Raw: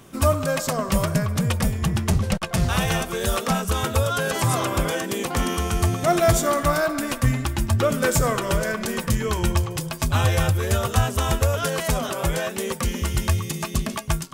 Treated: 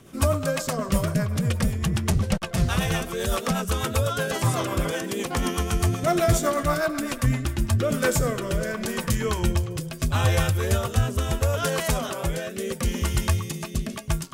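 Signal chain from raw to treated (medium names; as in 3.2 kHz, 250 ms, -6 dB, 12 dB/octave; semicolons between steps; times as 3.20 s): rotary cabinet horn 8 Hz, later 0.75 Hz, at 7.21 s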